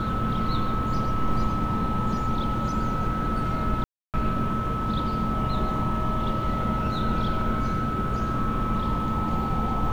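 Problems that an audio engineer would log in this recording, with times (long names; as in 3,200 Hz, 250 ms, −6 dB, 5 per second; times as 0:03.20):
whistle 1,300 Hz −29 dBFS
0:03.84–0:04.14: drop-out 298 ms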